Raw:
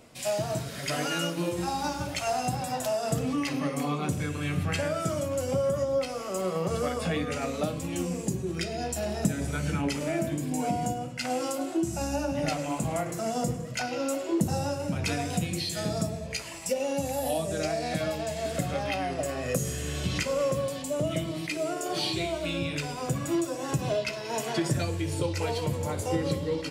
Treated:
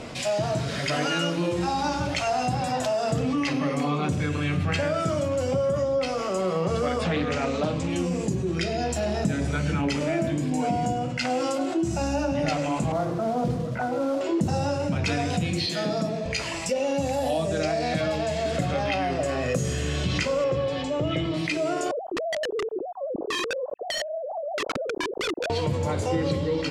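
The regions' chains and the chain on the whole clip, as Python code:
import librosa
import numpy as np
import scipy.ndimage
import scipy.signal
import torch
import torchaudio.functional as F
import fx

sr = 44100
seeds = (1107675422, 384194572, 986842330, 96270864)

y = fx.chain(x, sr, fx.lowpass(hz=8800.0, slope=24),
    fx.doppler_dist(depth_ms=0.29), at=(7.04, 7.9))
y = fx.chain(y, sr, fx.lowpass(hz=1400.0, slope=24),
    fx.mod_noise(seeds[0], snr_db=19), at=(12.92, 14.21))
y = fx.chain(y, sr, fx.highpass(hz=170.0, slope=24),
    fx.peak_eq(hz=8000.0, db=-8.5, octaves=0.57), at=(15.66, 16.26))
y = fx.chain(y, sr, fx.lowpass(hz=4200.0, slope=12),
    fx.comb(ms=2.4, depth=0.46), at=(20.44, 21.34))
y = fx.chain(y, sr, fx.sine_speech(),
    fx.cheby2_lowpass(hz=2000.0, order=4, stop_db=60),
    fx.overflow_wrap(gain_db=29.0), at=(21.91, 25.5))
y = scipy.signal.sosfilt(scipy.signal.butter(2, 5600.0, 'lowpass', fs=sr, output='sos'), y)
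y = fx.env_flatten(y, sr, amount_pct=50)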